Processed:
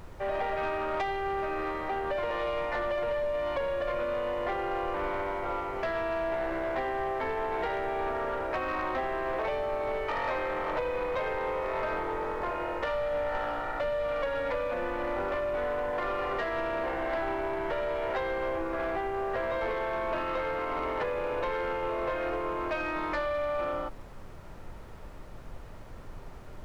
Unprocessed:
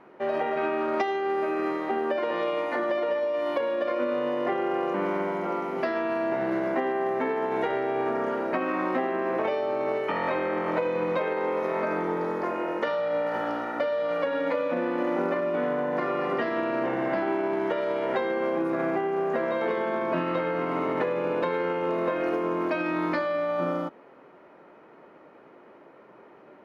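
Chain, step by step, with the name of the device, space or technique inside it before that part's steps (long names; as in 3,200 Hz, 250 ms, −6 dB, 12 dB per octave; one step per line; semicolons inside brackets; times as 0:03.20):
aircraft cabin announcement (band-pass filter 490–4,100 Hz; soft clipping −24.5 dBFS, distortion −17 dB; brown noise bed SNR 11 dB)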